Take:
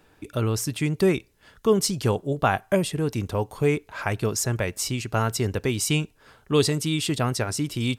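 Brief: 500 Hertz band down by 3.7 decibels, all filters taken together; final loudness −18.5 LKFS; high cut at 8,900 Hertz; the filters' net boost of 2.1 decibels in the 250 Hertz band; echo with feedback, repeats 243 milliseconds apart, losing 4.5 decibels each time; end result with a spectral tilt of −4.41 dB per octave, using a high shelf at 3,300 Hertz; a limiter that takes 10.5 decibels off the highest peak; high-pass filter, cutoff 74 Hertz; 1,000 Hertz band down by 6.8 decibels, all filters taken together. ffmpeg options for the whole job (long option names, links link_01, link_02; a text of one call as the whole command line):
ffmpeg -i in.wav -af "highpass=74,lowpass=8900,equalizer=frequency=250:width_type=o:gain=5,equalizer=frequency=500:width_type=o:gain=-5,equalizer=frequency=1000:width_type=o:gain=-9,highshelf=frequency=3300:gain=6,alimiter=limit=-19dB:level=0:latency=1,aecho=1:1:243|486|729|972|1215|1458|1701|1944|2187:0.596|0.357|0.214|0.129|0.0772|0.0463|0.0278|0.0167|0.01,volume=8.5dB" out.wav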